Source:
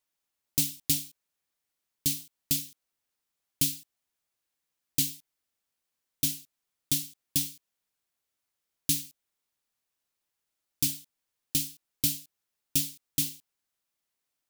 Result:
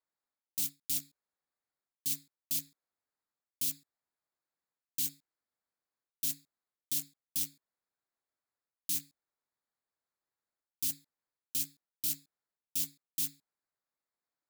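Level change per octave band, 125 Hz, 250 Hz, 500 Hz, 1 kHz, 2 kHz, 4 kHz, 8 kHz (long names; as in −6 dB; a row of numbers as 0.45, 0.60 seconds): −16.0 dB, −14.0 dB, below −15 dB, can't be measured, −9.0 dB, −8.5 dB, −6.5 dB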